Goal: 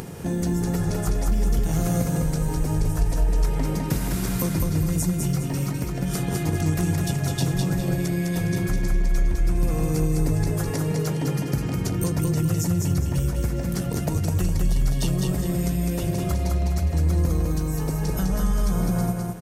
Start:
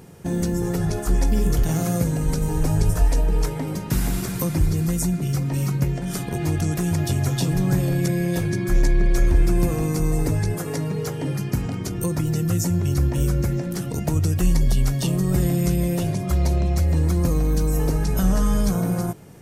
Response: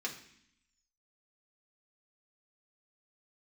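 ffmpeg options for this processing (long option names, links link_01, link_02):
-filter_complex "[0:a]acompressor=threshold=-21dB:ratio=6,asplit=2[link_01][link_02];[link_02]aecho=0:1:205|410|615|820|1025:0.668|0.234|0.0819|0.0287|0.01[link_03];[link_01][link_03]amix=inputs=2:normalize=0,acompressor=mode=upward:threshold=-27dB:ratio=2.5"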